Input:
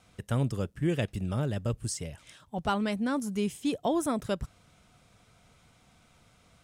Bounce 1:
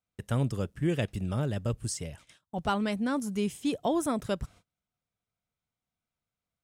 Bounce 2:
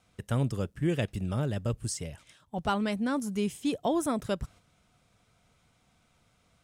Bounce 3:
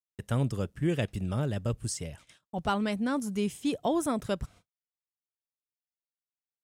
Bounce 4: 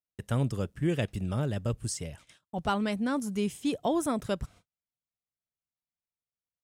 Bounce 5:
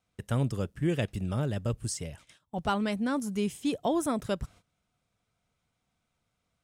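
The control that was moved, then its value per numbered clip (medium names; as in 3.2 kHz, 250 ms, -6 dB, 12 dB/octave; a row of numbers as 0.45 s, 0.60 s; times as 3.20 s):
gate, range: -30 dB, -6 dB, -58 dB, -44 dB, -18 dB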